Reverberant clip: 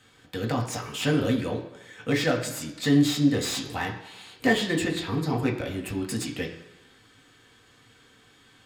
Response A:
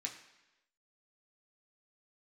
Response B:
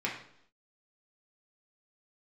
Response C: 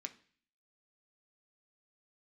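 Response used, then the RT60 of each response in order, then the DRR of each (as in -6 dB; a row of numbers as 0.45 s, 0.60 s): A; 1.0 s, 0.70 s, 0.45 s; -0.5 dB, -3.5 dB, 5.0 dB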